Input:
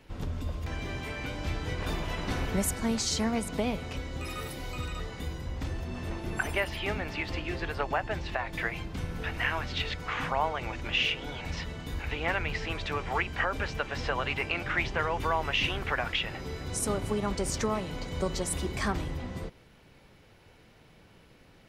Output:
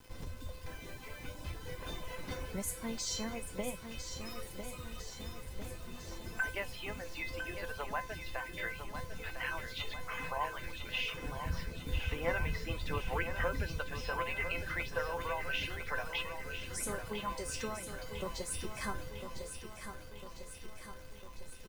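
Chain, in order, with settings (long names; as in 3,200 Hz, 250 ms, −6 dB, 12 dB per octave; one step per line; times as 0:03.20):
reverb reduction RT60 1.5 s
0:11.14–0:13.79: low-shelf EQ 450 Hz +11 dB
background noise brown −47 dBFS
bit reduction 8 bits
tuned comb filter 510 Hz, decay 0.31 s, harmonics all, mix 90%
repeating echo 1,002 ms, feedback 59%, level −8.5 dB
level +8 dB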